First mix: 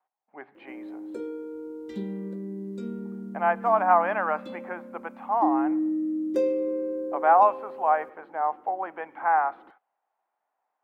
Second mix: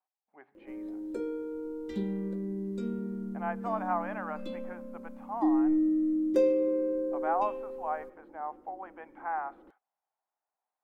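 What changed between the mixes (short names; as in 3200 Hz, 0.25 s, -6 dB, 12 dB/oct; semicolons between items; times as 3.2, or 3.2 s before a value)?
speech -11.5 dB; master: remove HPF 110 Hz 12 dB/oct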